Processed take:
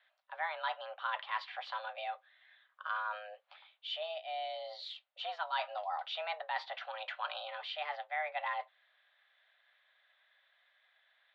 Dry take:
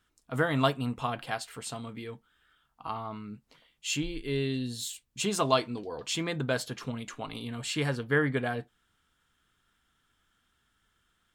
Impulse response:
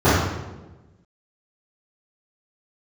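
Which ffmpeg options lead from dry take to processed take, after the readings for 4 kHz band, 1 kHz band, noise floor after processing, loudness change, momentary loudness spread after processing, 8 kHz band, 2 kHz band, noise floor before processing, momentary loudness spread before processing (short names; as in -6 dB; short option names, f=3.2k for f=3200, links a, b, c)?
-5.5 dB, -1.5 dB, -75 dBFS, -7.5 dB, 9 LU, under -35 dB, -5.5 dB, -74 dBFS, 13 LU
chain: -af "areverse,acompressor=threshold=-36dB:ratio=10,areverse,highpass=f=320:t=q:w=0.5412,highpass=f=320:t=q:w=1.307,lowpass=f=3.5k:t=q:w=0.5176,lowpass=f=3.5k:t=q:w=0.7071,lowpass=f=3.5k:t=q:w=1.932,afreqshift=310,volume=4dB"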